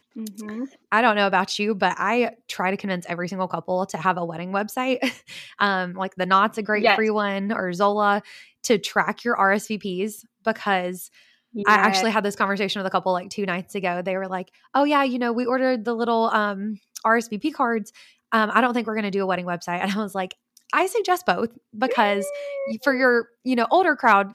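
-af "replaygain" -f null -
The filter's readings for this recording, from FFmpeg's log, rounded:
track_gain = +2.5 dB
track_peak = 0.504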